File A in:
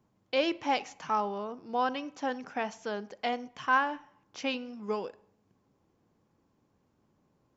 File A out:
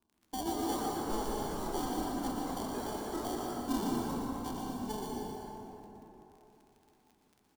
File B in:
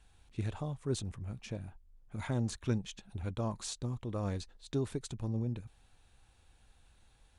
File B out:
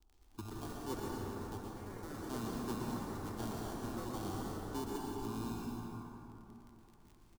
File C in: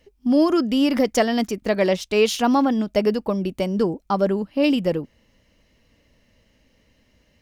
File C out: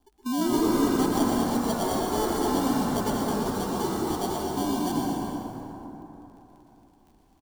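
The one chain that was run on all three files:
downward compressor 1.5 to 1, threshold −27 dBFS
decimation without filtering 34×
phaser with its sweep stopped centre 530 Hz, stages 6
surface crackle 21 per second −44 dBFS
delay with pitch and tempo change per echo 206 ms, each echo +4 semitones, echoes 3, each echo −6 dB
echo with shifted repeats 117 ms, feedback 55%, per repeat −57 Hz, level −8 dB
dense smooth reverb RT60 3.6 s, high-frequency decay 0.4×, pre-delay 110 ms, DRR −1.5 dB
level −5 dB

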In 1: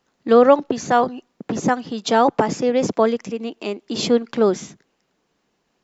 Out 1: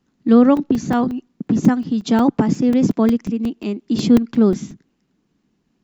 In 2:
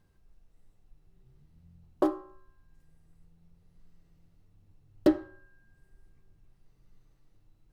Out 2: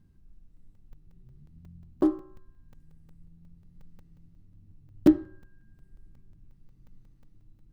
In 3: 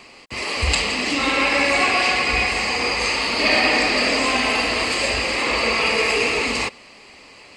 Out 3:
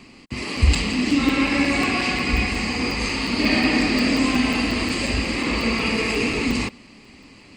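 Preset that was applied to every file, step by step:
low shelf with overshoot 370 Hz +11 dB, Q 1.5
regular buffer underruns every 0.18 s, samples 128, zero, from 0:00.57
level −4.5 dB

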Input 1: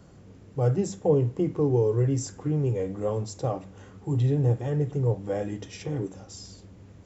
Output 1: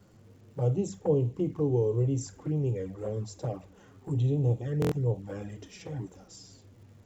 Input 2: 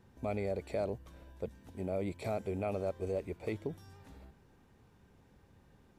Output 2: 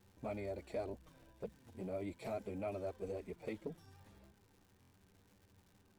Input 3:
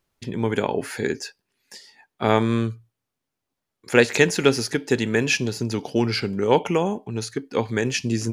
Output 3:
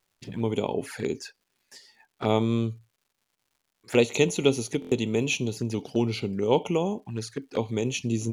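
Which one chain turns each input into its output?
flanger swept by the level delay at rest 10.8 ms, full sweep at −21.5 dBFS
surface crackle 260 per second −55 dBFS
buffer that repeats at 0:04.80, samples 1,024, times 4
level −3 dB

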